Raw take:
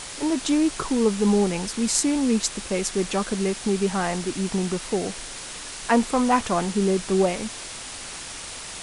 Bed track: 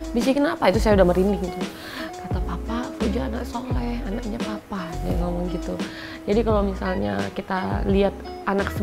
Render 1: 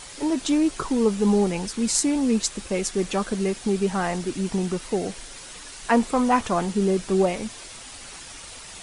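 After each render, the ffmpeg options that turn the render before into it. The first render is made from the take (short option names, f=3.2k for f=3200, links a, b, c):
-af "afftdn=nr=7:nf=-37"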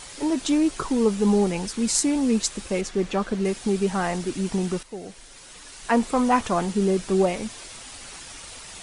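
-filter_complex "[0:a]asettb=1/sr,asplit=3[a][b][c];[a]atrim=end=2.814[d];[b]atrim=start=2.81:end=3.45,asetpts=PTS-STARTPTS,afade=t=in:d=0.004:c=qsin,afade=t=out:st=0.636:d=0.004:c=qsin,aemphasis=mode=reproduction:type=50fm[e];[c]atrim=start=3.446[f];[d][e]acrossfade=d=0.004:c1=hsin:c2=qsin[g];[g][f]acrossfade=d=0.004:c1=qsin:c2=hsin,asplit=2[h][i];[h]atrim=end=4.83,asetpts=PTS-STARTPTS,afade=t=out:st=4.826:d=0.004:c=hsin:silence=0.211349[j];[i]atrim=start=4.83,asetpts=PTS-STARTPTS,afade=t=in:d=1.36:silence=0.211349[k];[j][k]concat=n=2:v=0:a=1"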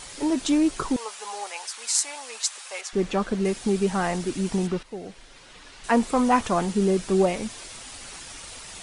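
-filter_complex "[0:a]asettb=1/sr,asplit=3[a][b][c];[a]atrim=end=0.964[d];[b]atrim=start=0.96:end=2.93,asetpts=PTS-STARTPTS,afade=t=in:d=0.004:c=qsin,afade=t=out:st=1.966:d=0.004:c=qsin,highpass=f=740:w=0.5412,highpass=f=740:w=1.3066[e];[c]atrim=start=2.926[f];[d][e]acrossfade=d=0.004:c1=hsin:c2=qsin[g];[g][f]acrossfade=d=0.004:c1=qsin:c2=hsin,asettb=1/sr,asplit=3[h][i][j];[h]atrim=end=4.674[k];[i]atrim=start=4.67:end=5.84,asetpts=PTS-STARTPTS,afade=t=in:d=0.004:c=qsin,afade=t=out:st=1.166:d=0.004:c=qsin,acrossover=split=4800[l][m];[m]acompressor=threshold=-60dB:ratio=4:attack=1:release=60[n];[l][n]amix=inputs=2:normalize=0[o];[j]atrim=start=5.836[p];[k][o]acrossfade=d=0.004:c1=hsin:c2=qsin[q];[q][p]acrossfade=d=0.004:c1=qsin:c2=hsin"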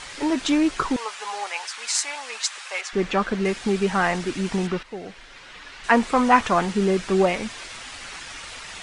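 -af "lowpass=7.7k,equalizer=f=1.8k:w=0.63:g=8.5"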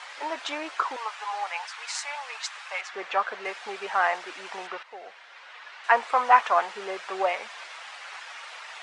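-af "highpass=f=670:w=0.5412,highpass=f=670:w=1.3066,aemphasis=mode=reproduction:type=riaa"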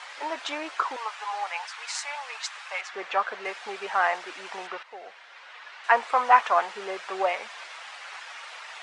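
-af anull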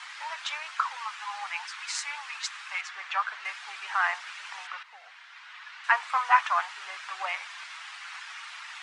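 -af "highpass=f=1k:w=0.5412,highpass=f=1k:w=1.3066"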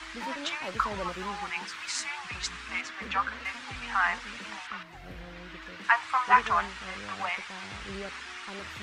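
-filter_complex "[1:a]volume=-21dB[a];[0:a][a]amix=inputs=2:normalize=0"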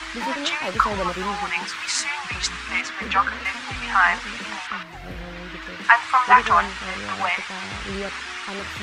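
-af "volume=9dB,alimiter=limit=-1dB:level=0:latency=1"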